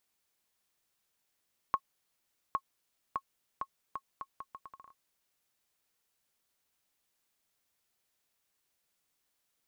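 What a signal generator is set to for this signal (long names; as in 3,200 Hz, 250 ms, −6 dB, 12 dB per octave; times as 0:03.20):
bouncing ball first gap 0.81 s, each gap 0.75, 1,090 Hz, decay 60 ms −17 dBFS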